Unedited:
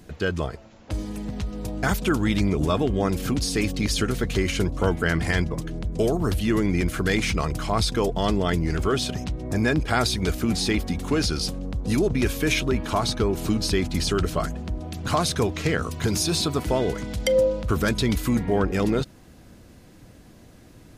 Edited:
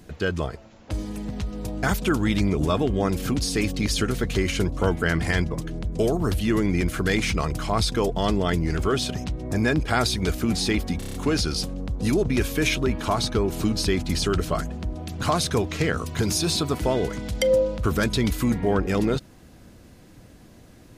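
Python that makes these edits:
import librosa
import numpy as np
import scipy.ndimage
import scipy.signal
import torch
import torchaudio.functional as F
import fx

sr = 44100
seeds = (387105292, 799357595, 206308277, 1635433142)

y = fx.edit(x, sr, fx.stutter(start_s=10.99, slice_s=0.03, count=6), tone=tone)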